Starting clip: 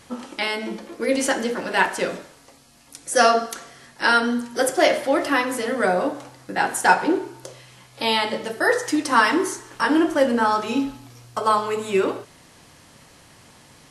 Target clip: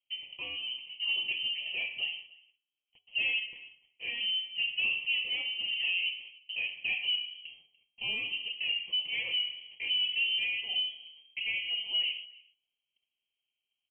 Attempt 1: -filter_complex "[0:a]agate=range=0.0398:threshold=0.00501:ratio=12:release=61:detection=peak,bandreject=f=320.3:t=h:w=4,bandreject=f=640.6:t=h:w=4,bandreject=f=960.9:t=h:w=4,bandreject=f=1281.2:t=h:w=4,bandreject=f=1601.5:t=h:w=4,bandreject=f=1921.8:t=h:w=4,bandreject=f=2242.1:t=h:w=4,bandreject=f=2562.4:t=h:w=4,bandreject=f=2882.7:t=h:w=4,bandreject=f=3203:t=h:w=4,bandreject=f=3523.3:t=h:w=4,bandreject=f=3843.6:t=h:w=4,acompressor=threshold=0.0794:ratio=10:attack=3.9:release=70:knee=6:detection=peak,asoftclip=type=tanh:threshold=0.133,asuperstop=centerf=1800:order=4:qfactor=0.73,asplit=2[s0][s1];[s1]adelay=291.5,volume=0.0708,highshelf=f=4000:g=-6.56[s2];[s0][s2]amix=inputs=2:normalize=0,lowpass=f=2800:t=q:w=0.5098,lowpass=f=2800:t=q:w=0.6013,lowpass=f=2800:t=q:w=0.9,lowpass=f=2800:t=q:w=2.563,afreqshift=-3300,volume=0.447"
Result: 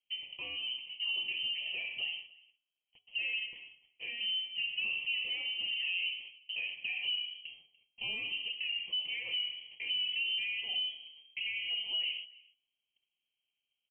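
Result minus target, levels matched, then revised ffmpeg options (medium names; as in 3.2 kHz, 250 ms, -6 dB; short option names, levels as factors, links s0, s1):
compression: peak gain reduction +13.5 dB
-filter_complex "[0:a]agate=range=0.0398:threshold=0.00501:ratio=12:release=61:detection=peak,bandreject=f=320.3:t=h:w=4,bandreject=f=640.6:t=h:w=4,bandreject=f=960.9:t=h:w=4,bandreject=f=1281.2:t=h:w=4,bandreject=f=1601.5:t=h:w=4,bandreject=f=1921.8:t=h:w=4,bandreject=f=2242.1:t=h:w=4,bandreject=f=2562.4:t=h:w=4,bandreject=f=2882.7:t=h:w=4,bandreject=f=3203:t=h:w=4,bandreject=f=3523.3:t=h:w=4,bandreject=f=3843.6:t=h:w=4,asoftclip=type=tanh:threshold=0.133,asuperstop=centerf=1800:order=4:qfactor=0.73,asplit=2[s0][s1];[s1]adelay=291.5,volume=0.0708,highshelf=f=4000:g=-6.56[s2];[s0][s2]amix=inputs=2:normalize=0,lowpass=f=2800:t=q:w=0.5098,lowpass=f=2800:t=q:w=0.6013,lowpass=f=2800:t=q:w=0.9,lowpass=f=2800:t=q:w=2.563,afreqshift=-3300,volume=0.447"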